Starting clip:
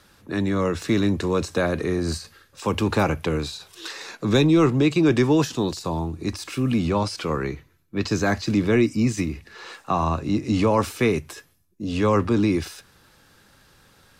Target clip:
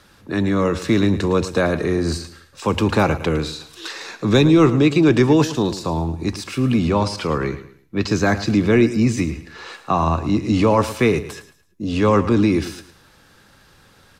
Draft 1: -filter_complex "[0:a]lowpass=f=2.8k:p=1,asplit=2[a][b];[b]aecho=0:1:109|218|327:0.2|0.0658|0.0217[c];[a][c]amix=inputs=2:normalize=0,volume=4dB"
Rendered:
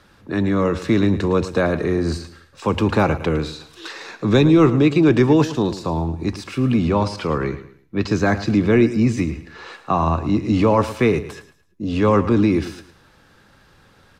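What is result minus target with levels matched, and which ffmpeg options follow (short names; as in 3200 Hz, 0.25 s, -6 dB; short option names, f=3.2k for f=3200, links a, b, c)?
8000 Hz band -6.0 dB
-filter_complex "[0:a]lowpass=f=8.2k:p=1,asplit=2[a][b];[b]aecho=0:1:109|218|327:0.2|0.0658|0.0217[c];[a][c]amix=inputs=2:normalize=0,volume=4dB"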